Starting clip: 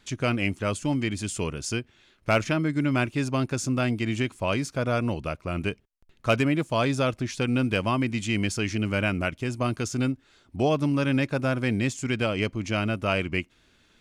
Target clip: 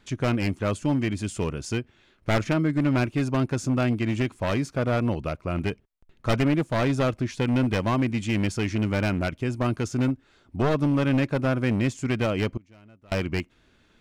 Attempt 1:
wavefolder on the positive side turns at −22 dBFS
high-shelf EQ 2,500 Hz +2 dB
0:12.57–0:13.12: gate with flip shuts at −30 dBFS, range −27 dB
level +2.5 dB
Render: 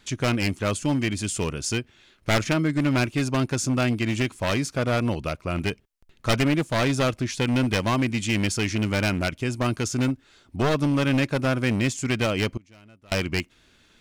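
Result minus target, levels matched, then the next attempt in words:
4,000 Hz band +6.0 dB
wavefolder on the positive side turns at −22 dBFS
high-shelf EQ 2,500 Hz −8.5 dB
0:12.57–0:13.12: gate with flip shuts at −30 dBFS, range −27 dB
level +2.5 dB

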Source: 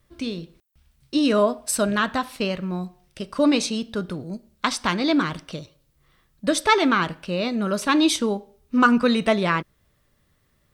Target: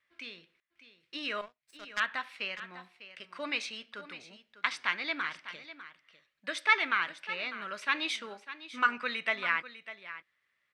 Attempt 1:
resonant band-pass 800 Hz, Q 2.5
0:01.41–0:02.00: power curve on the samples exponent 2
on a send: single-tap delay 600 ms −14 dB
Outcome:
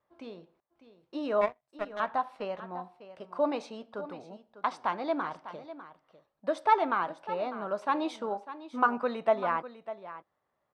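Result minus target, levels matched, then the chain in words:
2,000 Hz band −9.0 dB
resonant band-pass 2,100 Hz, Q 2.5
0:01.41–0:02.00: power curve on the samples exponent 2
on a send: single-tap delay 600 ms −14 dB

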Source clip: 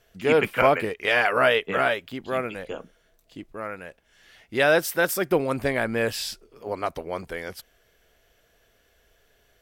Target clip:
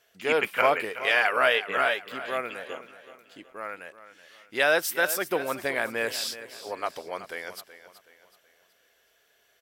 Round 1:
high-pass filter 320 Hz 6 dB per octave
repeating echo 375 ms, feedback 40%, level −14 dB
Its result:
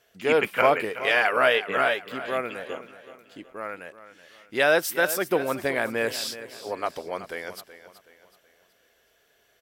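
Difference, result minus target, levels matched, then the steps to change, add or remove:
250 Hz band +4.0 dB
change: high-pass filter 760 Hz 6 dB per octave

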